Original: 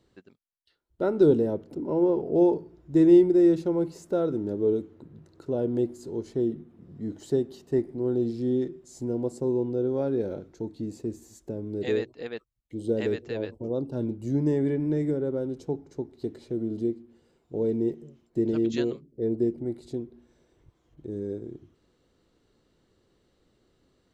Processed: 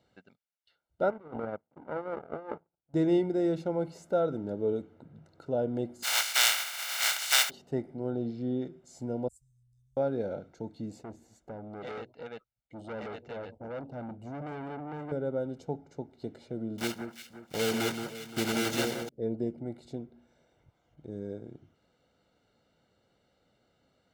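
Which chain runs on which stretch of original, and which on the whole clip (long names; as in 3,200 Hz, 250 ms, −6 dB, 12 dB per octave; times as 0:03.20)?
0:01.10–0:02.94: low-pass filter 2,400 Hz 24 dB per octave + power curve on the samples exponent 2 + compressor whose output falls as the input rises −35 dBFS
0:06.02–0:07.49: compressing power law on the bin magnitudes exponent 0.17 + high-pass filter 1,400 Hz + envelope flattener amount 50%
0:08.10–0:08.65: high-frequency loss of the air 110 metres + mains-hum notches 50/100/150 Hz
0:09.28–0:09.97: inverse Chebyshev band-stop filter 280–1,800 Hz, stop band 80 dB + low-shelf EQ 210 Hz +8 dB + mains-hum notches 50/100/150 Hz
0:11.03–0:15.12: tube saturation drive 33 dB, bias 0.35 + high-shelf EQ 4,200 Hz −9 dB
0:16.78–0:19.09: one scale factor per block 3 bits + high-shelf EQ 3,800 Hz +8.5 dB + delay that swaps between a low-pass and a high-pass 174 ms, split 1,700 Hz, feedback 59%, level −6 dB
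whole clip: high-pass filter 240 Hz 6 dB per octave; high-shelf EQ 5,600 Hz −10.5 dB; comb filter 1.4 ms, depth 62%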